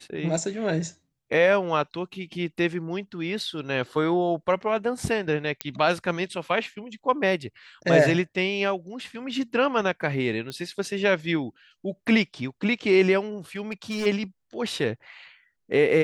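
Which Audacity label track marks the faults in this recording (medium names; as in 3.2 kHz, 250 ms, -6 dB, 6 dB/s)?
5.610000	5.610000	pop -9 dBFS
10.500000	10.500000	pop -20 dBFS
13.560000	14.070000	clipped -24.5 dBFS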